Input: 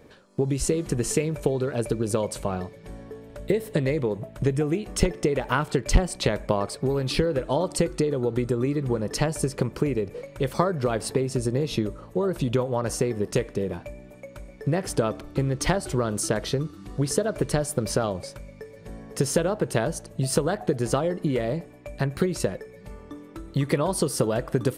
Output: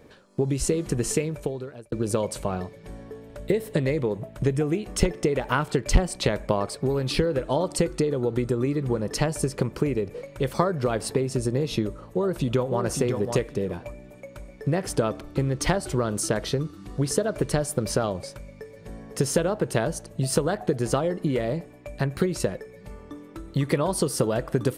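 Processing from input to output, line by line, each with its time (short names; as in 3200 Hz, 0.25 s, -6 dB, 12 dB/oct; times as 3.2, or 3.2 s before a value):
1.11–1.92 fade out
11.92–12.84 echo throw 0.55 s, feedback 15%, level -6 dB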